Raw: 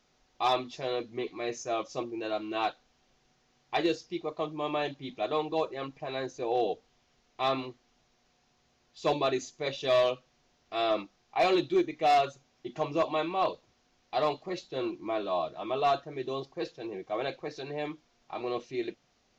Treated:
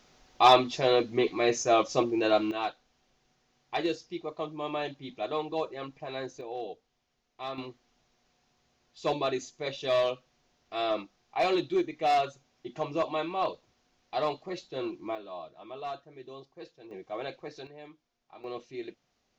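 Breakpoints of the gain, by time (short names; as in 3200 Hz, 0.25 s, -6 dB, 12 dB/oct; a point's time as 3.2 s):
+8.5 dB
from 2.51 s -2 dB
from 6.41 s -9 dB
from 7.58 s -1.5 dB
from 15.15 s -11 dB
from 16.91 s -4 dB
from 17.67 s -13 dB
from 18.44 s -5.5 dB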